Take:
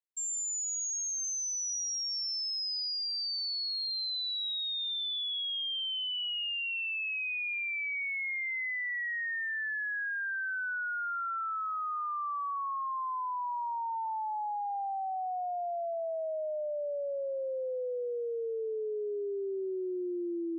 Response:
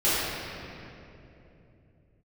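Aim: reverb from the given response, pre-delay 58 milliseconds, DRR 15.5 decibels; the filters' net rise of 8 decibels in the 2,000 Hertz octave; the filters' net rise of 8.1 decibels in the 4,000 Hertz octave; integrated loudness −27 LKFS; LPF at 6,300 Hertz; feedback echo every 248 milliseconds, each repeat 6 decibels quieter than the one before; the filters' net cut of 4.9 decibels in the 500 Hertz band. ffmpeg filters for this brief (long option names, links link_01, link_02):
-filter_complex "[0:a]lowpass=6300,equalizer=frequency=500:width_type=o:gain=-7,equalizer=frequency=2000:width_type=o:gain=8,equalizer=frequency=4000:width_type=o:gain=8.5,aecho=1:1:248|496|744|992|1240|1488:0.501|0.251|0.125|0.0626|0.0313|0.0157,asplit=2[link_01][link_02];[1:a]atrim=start_sample=2205,adelay=58[link_03];[link_02][link_03]afir=irnorm=-1:irlink=0,volume=-32dB[link_04];[link_01][link_04]amix=inputs=2:normalize=0,volume=-3dB"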